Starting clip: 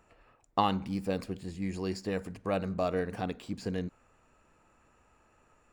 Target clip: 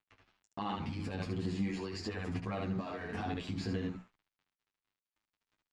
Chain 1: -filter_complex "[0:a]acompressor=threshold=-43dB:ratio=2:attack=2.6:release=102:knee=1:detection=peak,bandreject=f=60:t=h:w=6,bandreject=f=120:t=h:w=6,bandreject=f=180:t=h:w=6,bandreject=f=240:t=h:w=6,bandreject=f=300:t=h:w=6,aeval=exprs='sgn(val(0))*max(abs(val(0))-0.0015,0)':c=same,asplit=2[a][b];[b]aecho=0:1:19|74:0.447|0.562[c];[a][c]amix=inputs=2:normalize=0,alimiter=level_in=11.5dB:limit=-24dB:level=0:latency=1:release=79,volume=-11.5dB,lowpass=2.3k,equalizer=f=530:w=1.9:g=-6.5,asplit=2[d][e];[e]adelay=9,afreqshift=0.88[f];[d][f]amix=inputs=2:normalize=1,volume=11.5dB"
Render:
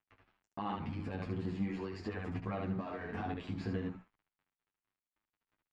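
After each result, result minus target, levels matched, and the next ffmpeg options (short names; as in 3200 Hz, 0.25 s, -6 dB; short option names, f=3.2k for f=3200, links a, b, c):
4000 Hz band -6.5 dB; compressor: peak gain reduction +4 dB
-filter_complex "[0:a]acompressor=threshold=-43dB:ratio=2:attack=2.6:release=102:knee=1:detection=peak,bandreject=f=60:t=h:w=6,bandreject=f=120:t=h:w=6,bandreject=f=180:t=h:w=6,bandreject=f=240:t=h:w=6,bandreject=f=300:t=h:w=6,aeval=exprs='sgn(val(0))*max(abs(val(0))-0.0015,0)':c=same,asplit=2[a][b];[b]aecho=0:1:19|74:0.447|0.562[c];[a][c]amix=inputs=2:normalize=0,alimiter=level_in=11.5dB:limit=-24dB:level=0:latency=1:release=79,volume=-11.5dB,lowpass=4.8k,equalizer=f=530:w=1.9:g=-6.5,asplit=2[d][e];[e]adelay=9,afreqshift=0.88[f];[d][f]amix=inputs=2:normalize=1,volume=11.5dB"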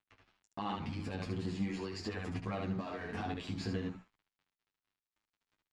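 compressor: peak gain reduction +4 dB
-filter_complex "[0:a]acompressor=threshold=-35.5dB:ratio=2:attack=2.6:release=102:knee=1:detection=peak,bandreject=f=60:t=h:w=6,bandreject=f=120:t=h:w=6,bandreject=f=180:t=h:w=6,bandreject=f=240:t=h:w=6,bandreject=f=300:t=h:w=6,aeval=exprs='sgn(val(0))*max(abs(val(0))-0.0015,0)':c=same,asplit=2[a][b];[b]aecho=0:1:19|74:0.447|0.562[c];[a][c]amix=inputs=2:normalize=0,alimiter=level_in=11.5dB:limit=-24dB:level=0:latency=1:release=79,volume=-11.5dB,lowpass=4.8k,equalizer=f=530:w=1.9:g=-6.5,asplit=2[d][e];[e]adelay=9,afreqshift=0.88[f];[d][f]amix=inputs=2:normalize=1,volume=11.5dB"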